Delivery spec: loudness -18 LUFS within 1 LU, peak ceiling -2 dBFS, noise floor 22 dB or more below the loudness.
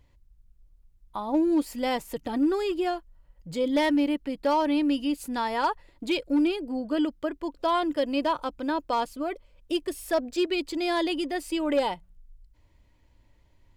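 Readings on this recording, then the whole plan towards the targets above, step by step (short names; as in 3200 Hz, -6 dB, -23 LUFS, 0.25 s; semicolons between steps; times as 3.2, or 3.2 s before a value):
clipped 0.2%; flat tops at -17.0 dBFS; loudness -27.5 LUFS; peak -17.0 dBFS; loudness target -18.0 LUFS
-> clip repair -17 dBFS; gain +9.5 dB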